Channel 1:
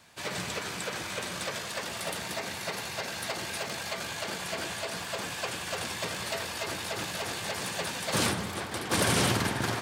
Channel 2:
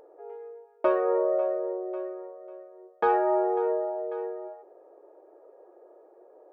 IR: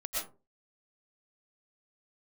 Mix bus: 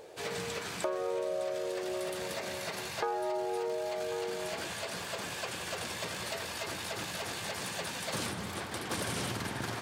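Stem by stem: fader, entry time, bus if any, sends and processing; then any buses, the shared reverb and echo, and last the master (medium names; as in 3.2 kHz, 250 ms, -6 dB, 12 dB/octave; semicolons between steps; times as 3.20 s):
-2.5 dB, 0.00 s, no send, none
+2.5 dB, 0.00 s, no send, none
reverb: none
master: compression 4:1, threshold -33 dBFS, peak gain reduction 14.5 dB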